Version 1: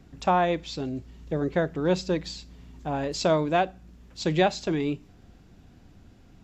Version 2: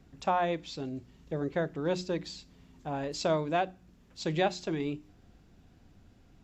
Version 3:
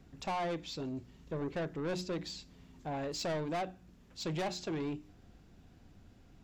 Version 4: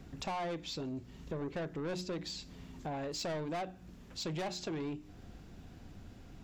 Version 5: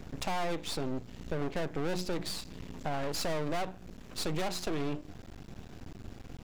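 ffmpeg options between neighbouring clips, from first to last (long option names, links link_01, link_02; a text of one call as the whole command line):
ffmpeg -i in.wav -af "bandreject=frequency=60:width_type=h:width=6,bandreject=frequency=120:width_type=h:width=6,bandreject=frequency=180:width_type=h:width=6,bandreject=frequency=240:width_type=h:width=6,bandreject=frequency=300:width_type=h:width=6,bandreject=frequency=360:width_type=h:width=6,volume=-5.5dB" out.wav
ffmpeg -i in.wav -af "asoftclip=type=tanh:threshold=-32dB" out.wav
ffmpeg -i in.wav -af "acompressor=threshold=-48dB:ratio=2.5,volume=7dB" out.wav
ffmpeg -i in.wav -af "aeval=exprs='max(val(0),0)':channel_layout=same,volume=9dB" out.wav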